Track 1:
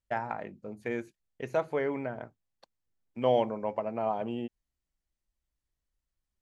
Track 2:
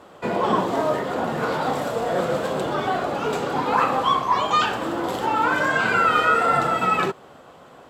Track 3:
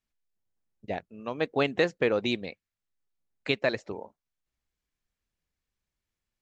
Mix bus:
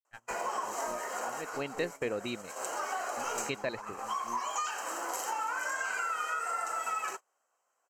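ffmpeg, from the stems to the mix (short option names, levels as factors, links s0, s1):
-filter_complex "[0:a]equalizer=f=160:t=o:w=0.67:g=-10,equalizer=f=630:t=o:w=0.67:g=-11,equalizer=f=1600:t=o:w=0.67:g=6,acrossover=split=630[s0][s1];[s0]aeval=exprs='val(0)*(1-1/2+1/2*cos(2*PI*4.4*n/s))':c=same[s2];[s1]aeval=exprs='val(0)*(1-1/2-1/2*cos(2*PI*4.4*n/s))':c=same[s3];[s2][s3]amix=inputs=2:normalize=0,aeval=exprs='(tanh(22.4*val(0)+0.7)-tanh(0.7))/22.4':c=same,volume=0.631[s4];[1:a]highpass=850,highshelf=f=5100:t=q:w=3:g=8,acompressor=threshold=0.0447:ratio=8,adelay=50,volume=0.631[s5];[2:a]volume=0.376,afade=t=in:st=1.3:d=0.54:silence=0.354813,asplit=2[s6][s7];[s7]apad=whole_len=350235[s8];[s5][s8]sidechaincompress=threshold=0.00398:ratio=6:attack=38:release=251[s9];[s4][s9][s6]amix=inputs=3:normalize=0,asuperstop=centerf=3500:order=20:qfactor=7.5,agate=range=0.0631:threshold=0.00891:ratio=16:detection=peak"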